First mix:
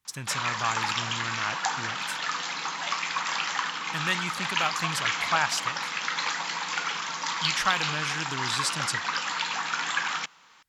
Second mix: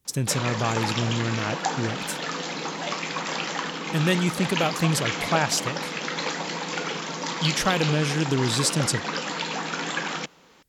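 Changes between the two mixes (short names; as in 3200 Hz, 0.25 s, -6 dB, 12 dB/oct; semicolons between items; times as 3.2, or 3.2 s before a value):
speech: add high shelf 5000 Hz +9 dB; master: add resonant low shelf 720 Hz +12.5 dB, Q 1.5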